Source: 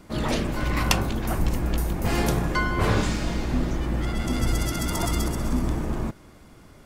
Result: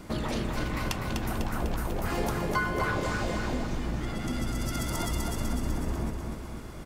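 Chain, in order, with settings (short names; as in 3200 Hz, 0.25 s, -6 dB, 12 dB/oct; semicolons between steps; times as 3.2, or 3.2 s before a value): compressor 12:1, threshold -32 dBFS, peak gain reduction 17.5 dB; feedback echo 0.249 s, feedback 59%, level -5 dB; 1.4–3.67 LFO bell 3.7 Hz 460–1500 Hz +9 dB; gain +4 dB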